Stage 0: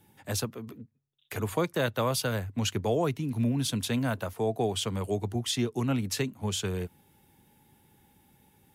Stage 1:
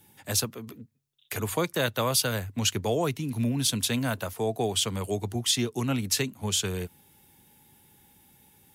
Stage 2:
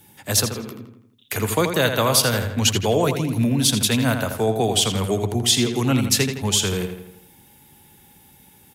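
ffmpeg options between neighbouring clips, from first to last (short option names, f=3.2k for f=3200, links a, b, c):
-af "highshelf=f=2.5k:g=8.5"
-filter_complex "[0:a]asplit=2[a][b];[b]adelay=82,lowpass=f=4.6k:p=1,volume=-7dB,asplit=2[c][d];[d]adelay=82,lowpass=f=4.6k:p=1,volume=0.52,asplit=2[e][f];[f]adelay=82,lowpass=f=4.6k:p=1,volume=0.52,asplit=2[g][h];[h]adelay=82,lowpass=f=4.6k:p=1,volume=0.52,asplit=2[i][j];[j]adelay=82,lowpass=f=4.6k:p=1,volume=0.52,asplit=2[k][l];[l]adelay=82,lowpass=f=4.6k:p=1,volume=0.52[m];[a][c][e][g][i][k][m]amix=inputs=7:normalize=0,volume=7dB"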